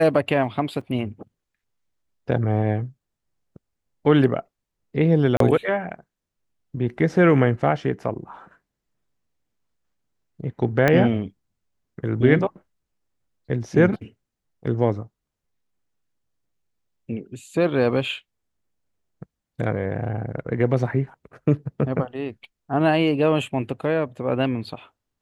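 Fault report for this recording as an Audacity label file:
0.810000	0.810000	dropout 3.9 ms
5.370000	5.400000	dropout 33 ms
10.880000	10.880000	pop -6 dBFS

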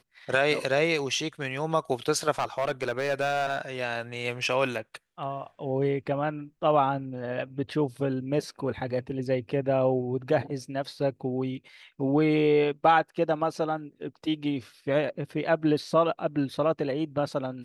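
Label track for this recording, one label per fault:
2.380000	3.610000	clipped -21.5 dBFS

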